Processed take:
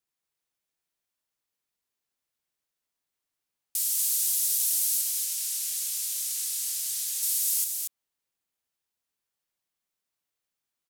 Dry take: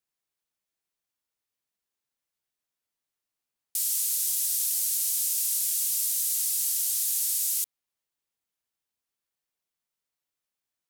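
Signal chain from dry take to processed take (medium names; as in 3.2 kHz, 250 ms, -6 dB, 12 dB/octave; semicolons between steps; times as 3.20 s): 5.01–7.23 s: treble shelf 8.9 kHz -9 dB; delay 233 ms -4.5 dB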